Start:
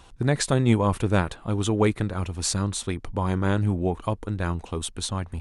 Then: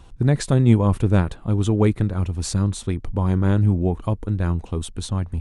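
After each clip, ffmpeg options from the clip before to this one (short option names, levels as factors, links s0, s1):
-af "lowshelf=f=380:g=11,volume=0.668"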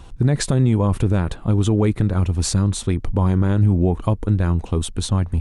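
-af "alimiter=limit=0.224:level=0:latency=1:release=102,volume=1.88"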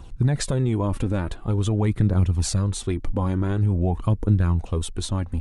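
-af "flanger=delay=0.1:depth=3.8:regen=41:speed=0.47:shape=triangular"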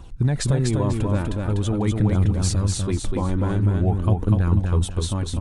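-af "aecho=1:1:247|494|741|988:0.668|0.18|0.0487|0.0132"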